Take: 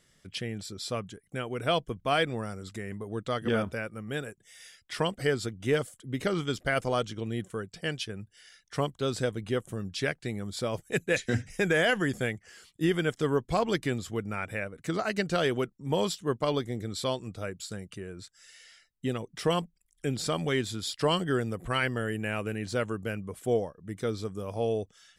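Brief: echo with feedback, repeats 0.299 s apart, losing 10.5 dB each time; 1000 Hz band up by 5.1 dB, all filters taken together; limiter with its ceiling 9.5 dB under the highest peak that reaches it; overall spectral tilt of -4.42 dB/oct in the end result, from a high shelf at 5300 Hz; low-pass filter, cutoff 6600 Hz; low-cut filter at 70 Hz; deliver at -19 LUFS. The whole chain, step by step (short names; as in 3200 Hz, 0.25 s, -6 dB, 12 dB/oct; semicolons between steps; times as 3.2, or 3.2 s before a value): HPF 70 Hz; LPF 6600 Hz; bell 1000 Hz +7 dB; high shelf 5300 Hz -3.5 dB; limiter -20 dBFS; feedback echo 0.299 s, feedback 30%, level -10.5 dB; gain +14 dB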